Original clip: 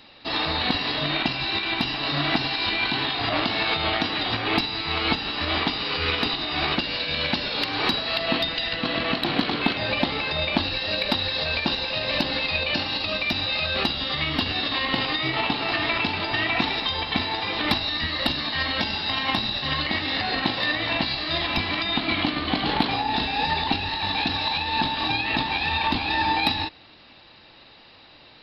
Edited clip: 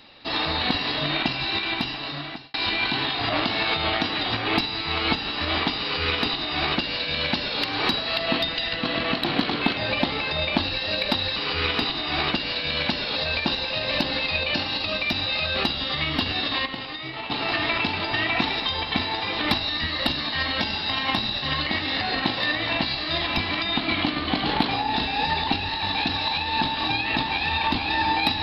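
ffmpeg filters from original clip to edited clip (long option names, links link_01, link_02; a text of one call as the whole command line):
ffmpeg -i in.wav -filter_complex "[0:a]asplit=6[link_01][link_02][link_03][link_04][link_05][link_06];[link_01]atrim=end=2.54,asetpts=PTS-STARTPTS,afade=type=out:start_time=1.65:duration=0.89[link_07];[link_02]atrim=start=2.54:end=11.362,asetpts=PTS-STARTPTS,afade=type=in:duration=0.004:curve=hsin[link_08];[link_03]atrim=start=5.798:end=7.602[link_09];[link_04]atrim=start=11.358:end=14.862[link_10];[link_05]atrim=start=14.858:end=15.512,asetpts=PTS-STARTPTS,volume=-8.5dB[link_11];[link_06]atrim=start=15.508[link_12];[link_07][link_08]concat=n=2:v=0:a=1[link_13];[link_13][link_09]acrossfade=duration=0.004:curve1=hsin:curve2=hsin[link_14];[link_14][link_10]acrossfade=duration=0.004:curve1=hsin:curve2=hsin[link_15];[link_15][link_11]acrossfade=duration=0.004:curve1=hsin:curve2=hsin[link_16];[link_16][link_12]acrossfade=duration=0.004:curve1=hsin:curve2=hsin" out.wav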